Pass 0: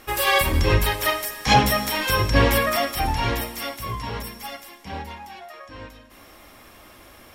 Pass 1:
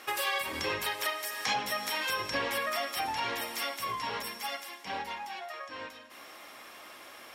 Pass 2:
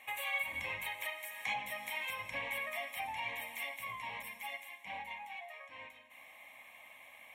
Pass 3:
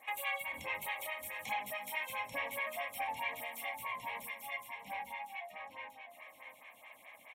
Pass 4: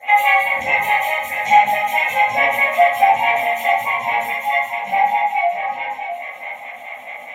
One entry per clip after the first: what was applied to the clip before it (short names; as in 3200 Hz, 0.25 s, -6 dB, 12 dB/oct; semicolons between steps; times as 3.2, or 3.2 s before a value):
weighting filter A; compressor 4:1, threshold -31 dBFS, peak gain reduction 15.5 dB
bell 2200 Hz +10.5 dB 0.24 oct; fixed phaser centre 1400 Hz, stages 6; gain -7.5 dB
on a send: echo 0.659 s -8.5 dB; on the sum: photocell phaser 4.7 Hz; gain +3.5 dB
small resonant body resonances 820/1400/2000 Hz, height 17 dB, ringing for 25 ms; reverb RT60 0.60 s, pre-delay 3 ms, DRR -13 dB; gain +2 dB